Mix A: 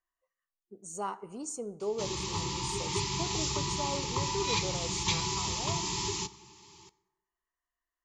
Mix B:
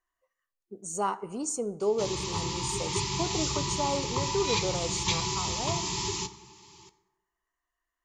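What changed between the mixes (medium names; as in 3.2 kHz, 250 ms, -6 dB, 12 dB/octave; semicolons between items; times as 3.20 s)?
speech +6.5 dB; background: send +6.0 dB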